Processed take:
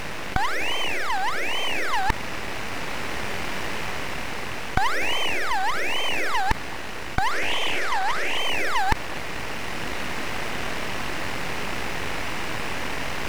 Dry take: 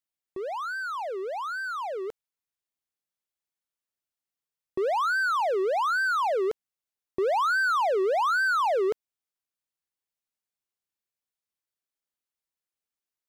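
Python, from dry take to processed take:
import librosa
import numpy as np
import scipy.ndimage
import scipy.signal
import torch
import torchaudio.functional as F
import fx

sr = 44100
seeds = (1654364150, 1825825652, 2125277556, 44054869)

p1 = fx.bin_compress(x, sr, power=0.2)
p2 = p1 + 10.0 ** (-16.5 / 20.0) * np.pad(p1, (int(249 * sr / 1000.0), 0))[:len(p1)]
p3 = np.abs(p2)
p4 = fx.rider(p3, sr, range_db=10, speed_s=2.0)
p5 = p3 + F.gain(torch.from_numpy(p4), 0.0).numpy()
p6 = fx.doppler_dist(p5, sr, depth_ms=0.33, at=(7.31, 8.38))
y = F.gain(torch.from_numpy(p6), -5.5).numpy()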